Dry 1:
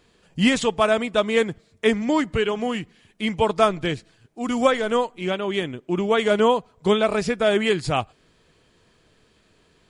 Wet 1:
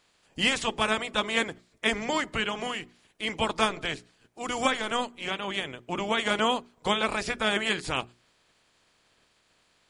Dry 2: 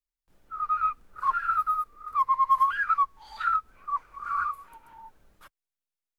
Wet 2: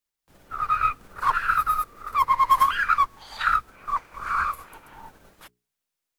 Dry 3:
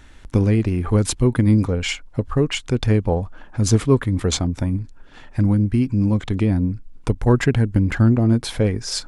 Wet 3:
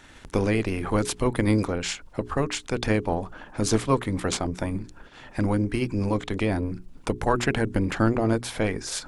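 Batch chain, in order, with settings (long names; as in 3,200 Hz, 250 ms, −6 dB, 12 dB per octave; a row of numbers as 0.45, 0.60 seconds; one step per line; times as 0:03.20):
ceiling on every frequency bin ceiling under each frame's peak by 17 dB
mains-hum notches 60/120/180/240/300/360/420 Hz
normalise the peak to −9 dBFS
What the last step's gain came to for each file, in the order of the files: −7.0, +4.0, −5.5 decibels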